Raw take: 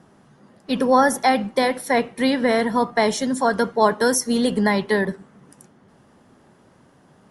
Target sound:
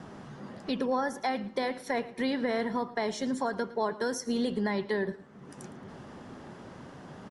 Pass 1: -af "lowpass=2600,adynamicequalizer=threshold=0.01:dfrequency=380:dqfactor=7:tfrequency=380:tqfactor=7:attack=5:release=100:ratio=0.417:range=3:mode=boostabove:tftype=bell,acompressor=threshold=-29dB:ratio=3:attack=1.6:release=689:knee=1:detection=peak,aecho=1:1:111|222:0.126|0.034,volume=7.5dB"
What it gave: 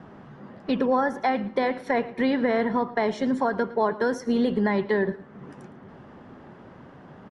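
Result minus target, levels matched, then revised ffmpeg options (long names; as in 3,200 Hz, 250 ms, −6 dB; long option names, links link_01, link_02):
8,000 Hz band −13.5 dB; downward compressor: peak gain reduction −6.5 dB
-af "lowpass=6400,adynamicequalizer=threshold=0.01:dfrequency=380:dqfactor=7:tfrequency=380:tqfactor=7:attack=5:release=100:ratio=0.417:range=3:mode=boostabove:tftype=bell,acompressor=threshold=-39dB:ratio=3:attack=1.6:release=689:knee=1:detection=peak,aecho=1:1:111|222:0.126|0.034,volume=7.5dB"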